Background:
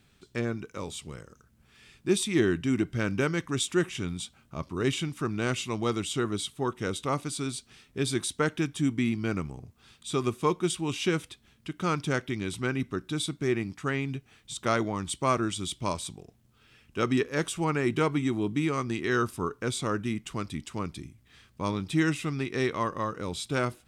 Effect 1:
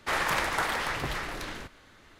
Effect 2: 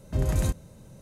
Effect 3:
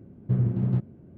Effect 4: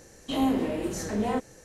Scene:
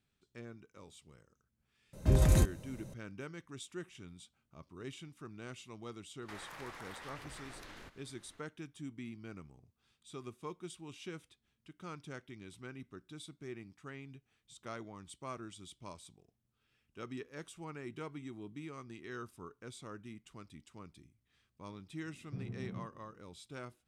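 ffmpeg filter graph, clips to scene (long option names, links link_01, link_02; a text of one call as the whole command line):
ffmpeg -i bed.wav -i cue0.wav -i cue1.wav -i cue2.wav -filter_complex "[0:a]volume=-18.5dB[link_01];[2:a]volume=16.5dB,asoftclip=hard,volume=-16.5dB[link_02];[1:a]acompressor=threshold=-37dB:ratio=6:attack=3.2:release=140:knee=1:detection=peak[link_03];[3:a]asplit=2[link_04][link_05];[link_05]adelay=28,volume=-2.5dB[link_06];[link_04][link_06]amix=inputs=2:normalize=0[link_07];[link_02]atrim=end=1.01,asetpts=PTS-STARTPTS,volume=-0.5dB,afade=type=in:duration=0.004:curve=hsin,afade=type=out:start_time=1.006:duration=0.004:curve=hsin,adelay=1930[link_08];[link_03]atrim=end=2.19,asetpts=PTS-STARTPTS,volume=-9.5dB,afade=type=in:duration=0.004:curve=hsin,afade=type=out:start_time=2.186:duration=0.004:curve=hsin,adelay=6220[link_09];[link_07]atrim=end=1.17,asetpts=PTS-STARTPTS,volume=-18dB,afade=type=in:duration=0.004:curve=hsin,afade=type=out:start_time=1.166:duration=0.004:curve=hsin,adelay=22030[link_10];[link_01][link_08][link_09][link_10]amix=inputs=4:normalize=0" out.wav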